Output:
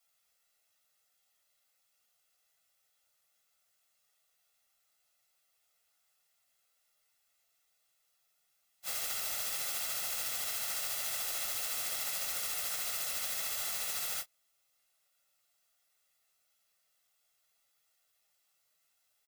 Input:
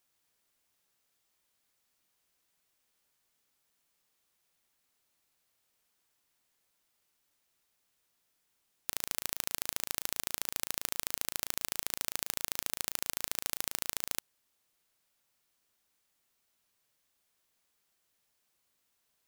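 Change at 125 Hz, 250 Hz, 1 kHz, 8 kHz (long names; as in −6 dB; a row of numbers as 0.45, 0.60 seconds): −6.5, −10.0, 0.0, +1.5 decibels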